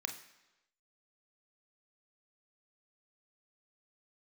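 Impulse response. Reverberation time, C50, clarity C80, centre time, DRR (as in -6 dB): 1.0 s, 10.5 dB, 13.5 dB, 15 ms, 5.5 dB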